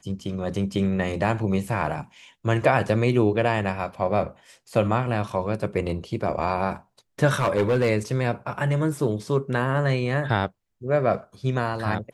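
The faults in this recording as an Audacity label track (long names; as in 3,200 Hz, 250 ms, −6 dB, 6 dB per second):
7.390000	7.900000	clipping −16 dBFS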